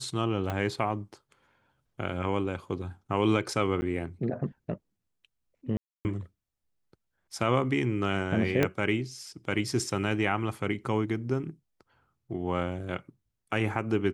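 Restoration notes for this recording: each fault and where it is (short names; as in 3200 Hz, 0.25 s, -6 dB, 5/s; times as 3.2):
0.5 pop -18 dBFS
3.81–3.82 gap 10 ms
5.77–6.05 gap 0.279 s
8.63 pop -11 dBFS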